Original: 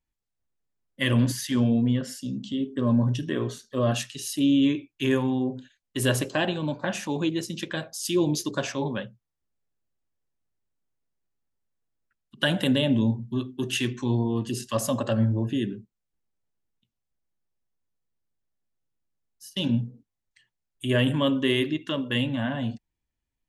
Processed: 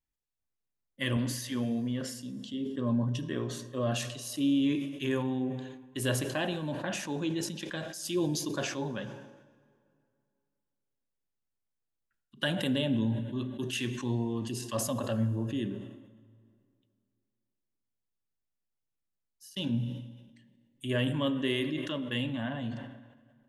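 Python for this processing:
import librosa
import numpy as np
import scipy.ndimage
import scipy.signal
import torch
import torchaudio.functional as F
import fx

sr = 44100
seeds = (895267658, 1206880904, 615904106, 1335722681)

y = fx.low_shelf(x, sr, hz=120.0, db=-11.5, at=(1.17, 2.54))
y = fx.rev_plate(y, sr, seeds[0], rt60_s=2.4, hf_ratio=0.7, predelay_ms=0, drr_db=15.0)
y = fx.sustainer(y, sr, db_per_s=54.0)
y = y * librosa.db_to_amplitude(-7.0)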